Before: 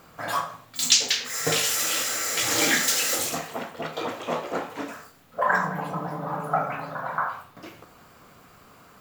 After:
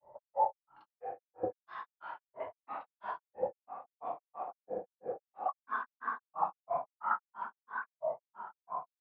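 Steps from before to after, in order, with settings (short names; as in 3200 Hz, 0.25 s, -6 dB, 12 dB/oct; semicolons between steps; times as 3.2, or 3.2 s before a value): vocal tract filter a; repeats that get brighter 0.797 s, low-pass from 750 Hz, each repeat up 1 oct, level -6 dB; grains 0.198 s, grains 3/s, pitch spread up and down by 7 st; gain +7 dB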